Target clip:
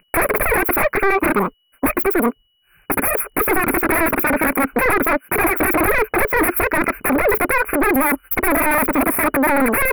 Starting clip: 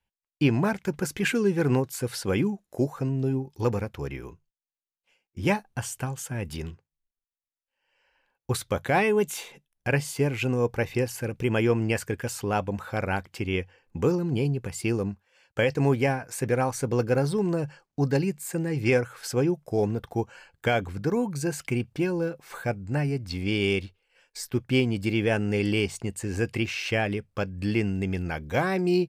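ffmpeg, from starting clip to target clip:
-af "equalizer=f=270:t=o:w=0.74:g=-2.5,aeval=exprs='0.299*sin(PI/2*8.91*val(0)/0.299)':c=same,aeval=exprs='val(0)+0.0178*sin(2*PI*1000*n/s)':c=same,asuperstop=centerf=1700:order=20:qfactor=0.67,asetrate=129213,aresample=44100,asoftclip=type=tanh:threshold=-6dB"

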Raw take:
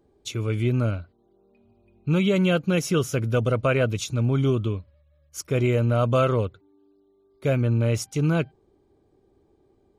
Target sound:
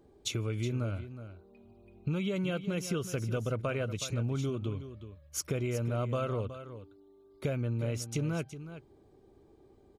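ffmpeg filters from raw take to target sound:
-filter_complex "[0:a]acompressor=threshold=-33dB:ratio=6,asplit=2[a][b];[b]aecho=0:1:369:0.251[c];[a][c]amix=inputs=2:normalize=0,volume=2dB"

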